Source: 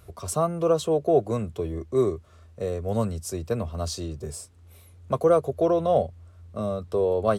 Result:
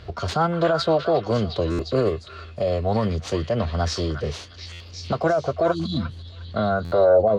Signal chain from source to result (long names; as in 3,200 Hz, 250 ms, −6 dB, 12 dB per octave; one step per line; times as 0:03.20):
running median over 5 samples
healed spectral selection 0:05.74–0:06.44, 330–2,500 Hz after
in parallel at 0 dB: downward compressor, threshold −35 dBFS, peak gain reduction 19 dB
on the sum: brickwall limiter −16.5 dBFS, peak gain reduction 9 dB
low-pass filter sweep 3,500 Hz → 490 Hz, 0:06.40–0:07.18
on a send: echo through a band-pass that steps 355 ms, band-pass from 1,600 Hz, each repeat 0.7 octaves, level −2 dB
on the sum: formants moved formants +3 semitones
buffer that repeats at 0:01.71/0:04.72/0:06.84, samples 512, times 6
level +4 dB